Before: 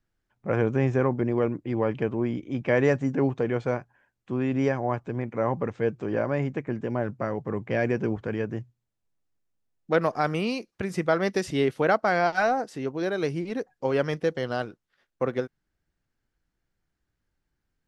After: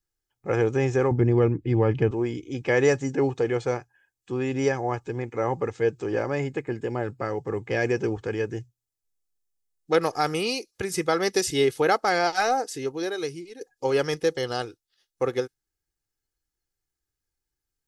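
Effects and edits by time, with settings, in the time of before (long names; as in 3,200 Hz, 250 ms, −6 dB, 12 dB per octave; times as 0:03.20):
0:01.11–0:02.11: bass and treble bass +11 dB, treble −7 dB
0:06.42–0:07.29: notch filter 5,900 Hz, Q 6
0:12.77–0:13.61: fade out, to −14.5 dB
whole clip: noise reduction from a noise print of the clip's start 10 dB; bass and treble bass −1 dB, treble +14 dB; comb filter 2.4 ms, depth 51%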